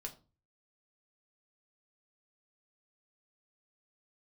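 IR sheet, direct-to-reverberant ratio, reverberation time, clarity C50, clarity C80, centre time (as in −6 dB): 1.5 dB, 0.35 s, 14.5 dB, 19.5 dB, 9 ms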